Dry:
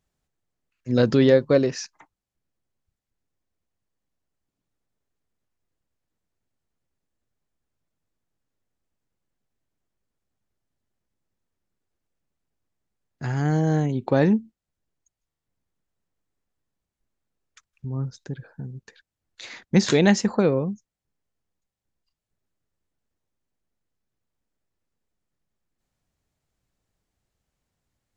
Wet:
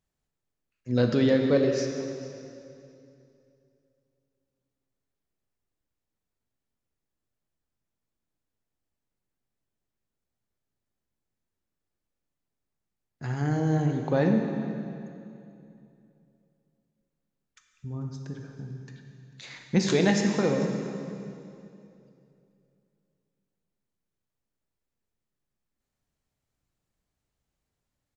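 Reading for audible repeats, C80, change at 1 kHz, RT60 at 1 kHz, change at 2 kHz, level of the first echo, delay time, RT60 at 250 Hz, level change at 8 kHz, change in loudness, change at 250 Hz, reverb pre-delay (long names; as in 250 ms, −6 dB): 1, 5.0 dB, −3.5 dB, 2.5 s, −3.5 dB, −19.5 dB, 444 ms, 3.0 s, can't be measured, −5.0 dB, −3.5 dB, 12 ms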